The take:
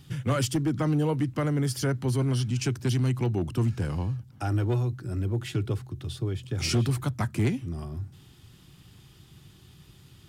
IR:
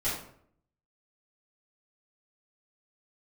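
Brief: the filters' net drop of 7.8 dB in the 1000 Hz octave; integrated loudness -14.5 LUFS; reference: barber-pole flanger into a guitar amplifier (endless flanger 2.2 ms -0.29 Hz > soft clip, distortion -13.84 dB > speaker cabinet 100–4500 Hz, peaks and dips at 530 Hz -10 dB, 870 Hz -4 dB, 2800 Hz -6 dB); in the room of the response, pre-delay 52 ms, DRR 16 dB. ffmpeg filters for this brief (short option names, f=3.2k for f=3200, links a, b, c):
-filter_complex "[0:a]equalizer=f=1k:t=o:g=-8,asplit=2[a][b];[1:a]atrim=start_sample=2205,adelay=52[c];[b][c]afir=irnorm=-1:irlink=0,volume=-23.5dB[d];[a][d]amix=inputs=2:normalize=0,asplit=2[e][f];[f]adelay=2.2,afreqshift=-0.29[g];[e][g]amix=inputs=2:normalize=1,asoftclip=threshold=-25.5dB,highpass=100,equalizer=f=530:t=q:w=4:g=-10,equalizer=f=870:t=q:w=4:g=-4,equalizer=f=2.8k:t=q:w=4:g=-6,lowpass=f=4.5k:w=0.5412,lowpass=f=4.5k:w=1.3066,volume=21dB"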